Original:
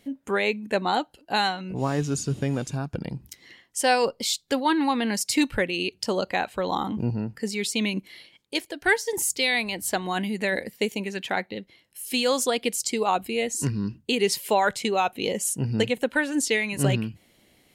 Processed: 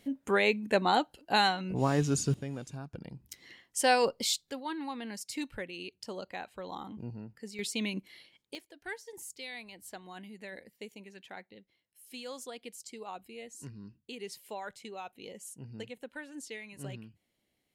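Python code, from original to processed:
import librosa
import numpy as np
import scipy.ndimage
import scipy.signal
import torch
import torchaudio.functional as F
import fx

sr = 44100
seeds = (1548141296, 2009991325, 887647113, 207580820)

y = fx.gain(x, sr, db=fx.steps((0.0, -2.0), (2.34, -12.5), (3.3, -4.0), (4.5, -15.0), (7.59, -8.0), (8.55, -19.5)))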